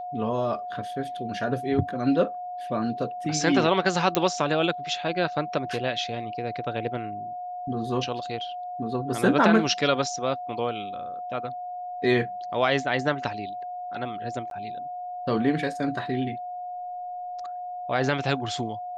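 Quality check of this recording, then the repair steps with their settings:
whine 720 Hz -32 dBFS
4.15 s: pop -6 dBFS
14.50–14.51 s: dropout 12 ms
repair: de-click; band-stop 720 Hz, Q 30; interpolate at 14.50 s, 12 ms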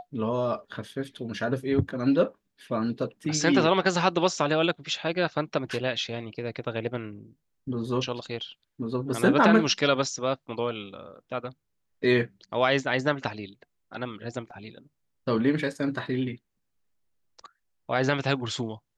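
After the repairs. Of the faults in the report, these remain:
nothing left

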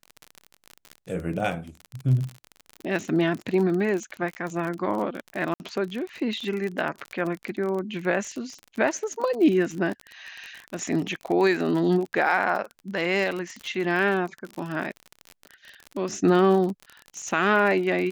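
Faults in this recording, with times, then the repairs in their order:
crackle 40 per s -29 dBFS
5.54–5.60 s: dropout 59 ms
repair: de-click; interpolate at 5.54 s, 59 ms

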